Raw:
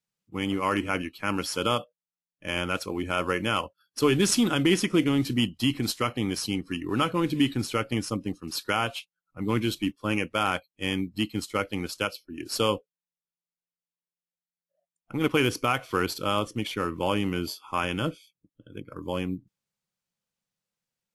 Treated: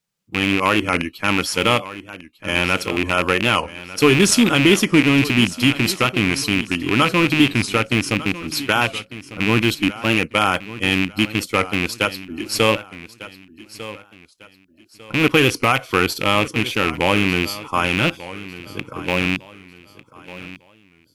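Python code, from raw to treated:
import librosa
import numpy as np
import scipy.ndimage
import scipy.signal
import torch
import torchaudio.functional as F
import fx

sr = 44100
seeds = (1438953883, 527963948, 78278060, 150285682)

y = fx.rattle_buzz(x, sr, strikes_db=-32.0, level_db=-16.0)
y = fx.echo_feedback(y, sr, ms=1199, feedback_pct=33, wet_db=-16.0)
y = fx.record_warp(y, sr, rpm=45.0, depth_cents=100.0)
y = y * librosa.db_to_amplitude(8.0)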